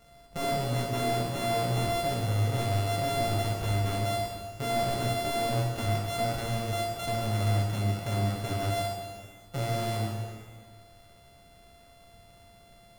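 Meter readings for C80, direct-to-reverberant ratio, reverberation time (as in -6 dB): 3.0 dB, -1.5 dB, 1.7 s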